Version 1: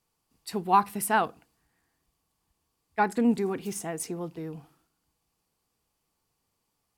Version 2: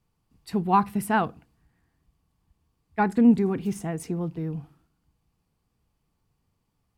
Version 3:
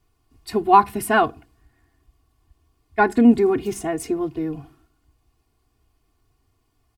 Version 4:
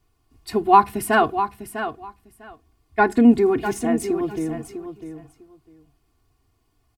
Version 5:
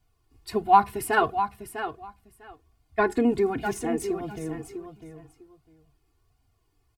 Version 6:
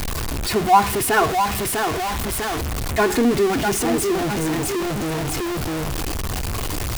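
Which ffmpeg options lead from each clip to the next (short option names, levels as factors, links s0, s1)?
-af "bass=f=250:g=12,treble=f=4000:g=-7"
-af "aecho=1:1:2.8:0.97,volume=1.68"
-af "aecho=1:1:650|1300:0.316|0.0506"
-af "flanger=delay=1.3:depth=1.1:regen=-32:speed=1.4:shape=sinusoidal"
-af "aeval=exprs='val(0)+0.5*0.1*sgn(val(0))':c=same,volume=1.19"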